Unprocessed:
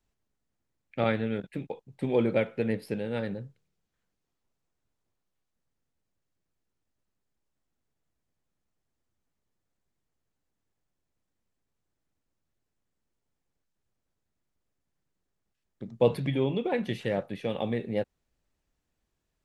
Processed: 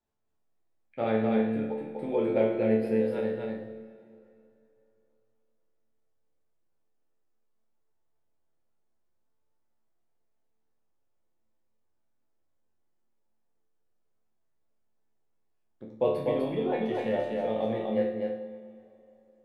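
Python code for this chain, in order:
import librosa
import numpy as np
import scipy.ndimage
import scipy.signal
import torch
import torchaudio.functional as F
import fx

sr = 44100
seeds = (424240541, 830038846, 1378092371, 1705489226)

p1 = fx.peak_eq(x, sr, hz=610.0, db=11.0, octaves=2.7)
p2 = fx.resonator_bank(p1, sr, root=38, chord='minor', decay_s=0.65)
p3 = p2 + fx.echo_single(p2, sr, ms=249, db=-3.0, dry=0)
p4 = fx.rev_plate(p3, sr, seeds[0], rt60_s=3.1, hf_ratio=0.8, predelay_ms=0, drr_db=14.0)
y = p4 * librosa.db_to_amplitude(6.0)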